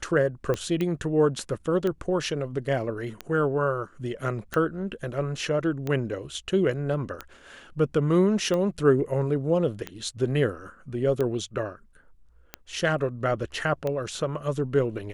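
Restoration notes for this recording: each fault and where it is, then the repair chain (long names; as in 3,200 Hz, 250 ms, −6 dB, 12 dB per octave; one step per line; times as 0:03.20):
scratch tick 45 rpm −16 dBFS
0:00.81: click −16 dBFS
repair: click removal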